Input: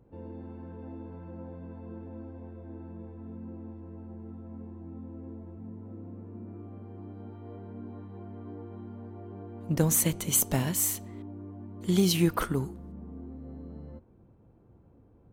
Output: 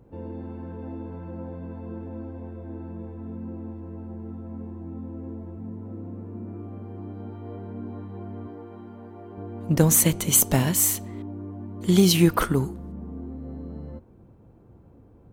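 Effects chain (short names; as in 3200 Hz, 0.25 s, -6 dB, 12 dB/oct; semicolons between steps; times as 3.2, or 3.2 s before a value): 8.47–9.38 low shelf 260 Hz -10.5 dB; gain +6.5 dB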